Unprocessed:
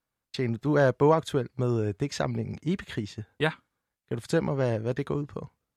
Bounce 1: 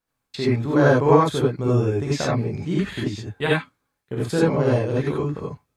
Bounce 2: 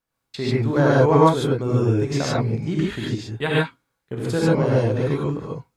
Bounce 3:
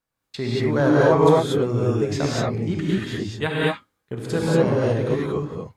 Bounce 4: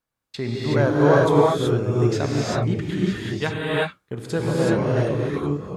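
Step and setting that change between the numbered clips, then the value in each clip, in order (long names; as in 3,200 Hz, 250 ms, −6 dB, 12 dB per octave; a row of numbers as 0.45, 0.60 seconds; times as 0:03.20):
reverb whose tail is shaped and stops, gate: 110, 170, 260, 400 milliseconds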